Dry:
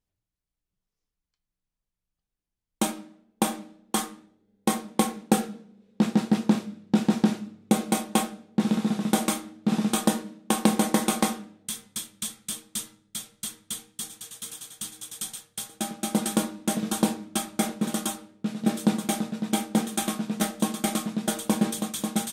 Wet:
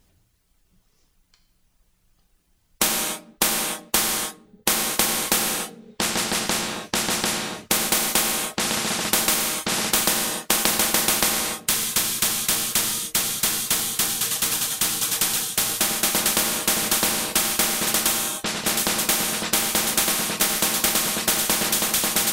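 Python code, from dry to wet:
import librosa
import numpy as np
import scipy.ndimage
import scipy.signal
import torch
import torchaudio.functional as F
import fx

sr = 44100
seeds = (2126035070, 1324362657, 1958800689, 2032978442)

y = fx.dereverb_blind(x, sr, rt60_s=0.81)
y = fx.rev_gated(y, sr, seeds[0], gate_ms=320, shape='falling', drr_db=5.0)
y = fx.spectral_comp(y, sr, ratio=4.0)
y = F.gain(torch.from_numpy(y), 4.0).numpy()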